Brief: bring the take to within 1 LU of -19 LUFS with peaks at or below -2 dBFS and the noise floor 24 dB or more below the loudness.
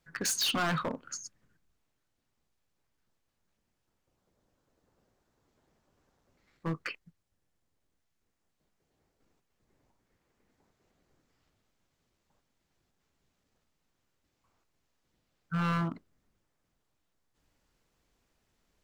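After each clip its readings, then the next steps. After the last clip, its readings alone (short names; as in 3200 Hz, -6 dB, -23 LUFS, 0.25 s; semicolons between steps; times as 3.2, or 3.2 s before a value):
clipped 0.6%; flat tops at -26.5 dBFS; loudness -32.5 LUFS; peak -26.5 dBFS; loudness target -19.0 LUFS
-> clip repair -26.5 dBFS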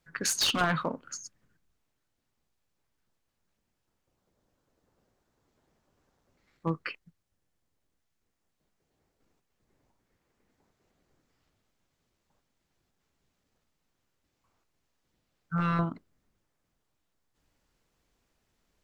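clipped 0.0%; loudness -30.0 LUFS; peak -17.5 dBFS; loudness target -19.0 LUFS
-> gain +11 dB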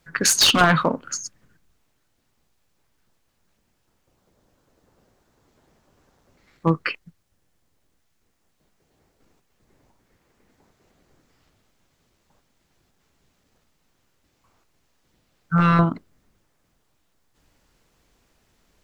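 loudness -19.5 LUFS; peak -6.5 dBFS; noise floor -69 dBFS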